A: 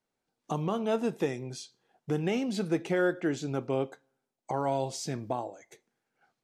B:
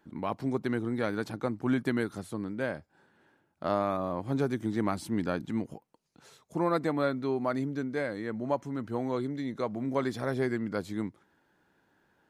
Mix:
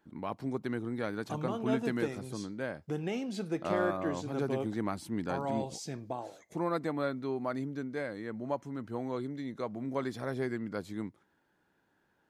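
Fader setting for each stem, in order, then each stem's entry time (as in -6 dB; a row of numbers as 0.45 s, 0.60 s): -5.5 dB, -4.5 dB; 0.80 s, 0.00 s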